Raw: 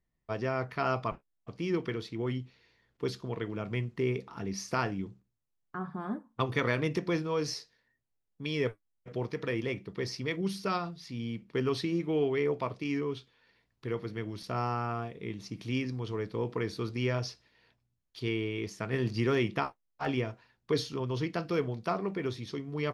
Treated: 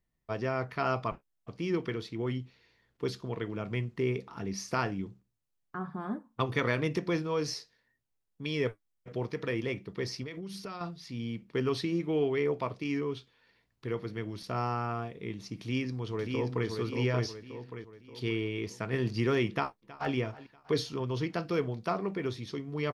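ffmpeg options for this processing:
-filter_complex "[0:a]asettb=1/sr,asplit=3[a][b][c];[a]atrim=end=10.234[d];[b]atrim=start=10.23:end=10.81,asetpts=PTS-STARTPTS,afade=t=in:d=0.004:c=qsin,afade=t=out:st=0.576:d=0.004:c=qsin,acompressor=threshold=-36dB:ratio=12:attack=3.2:release=140:knee=1:detection=peak[e];[c]atrim=start=10.806[f];[d][e]acrossfade=d=0.004:c1=hsin:c2=qsin[g];[g][f]acrossfade=d=0.004:c1=qsin:c2=hsin,asplit=2[h][i];[i]afade=t=in:st=15.6:d=0.01,afade=t=out:st=16.68:d=0.01,aecho=0:1:580|1160|1740|2320|2900|3480:0.630957|0.283931|0.127769|0.057496|0.0258732|0.0116429[j];[h][j]amix=inputs=2:normalize=0,asplit=2[k][l];[l]afade=t=in:st=19.5:d=0.01,afade=t=out:st=20.14:d=0.01,aecho=0:1:320|640|960|1280:0.125893|0.0629463|0.0314731|0.0157366[m];[k][m]amix=inputs=2:normalize=0"

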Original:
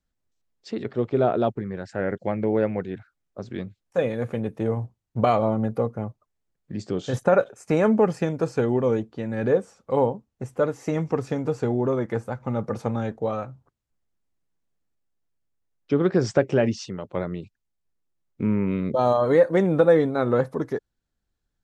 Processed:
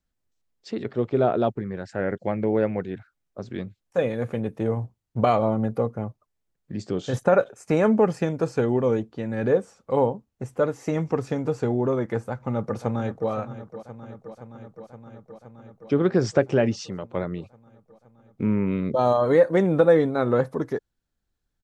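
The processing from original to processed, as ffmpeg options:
-filter_complex "[0:a]asplit=2[a][b];[b]afade=t=in:st=12.29:d=0.01,afade=t=out:st=13.3:d=0.01,aecho=0:1:520|1040|1560|2080|2600|3120|3640|4160|4680|5200|5720|6240:0.211349|0.169079|0.135263|0.108211|0.0865685|0.0692548|0.0554038|0.0443231|0.0354585|0.0283668|0.0226934|0.0181547[c];[a][c]amix=inputs=2:normalize=0"

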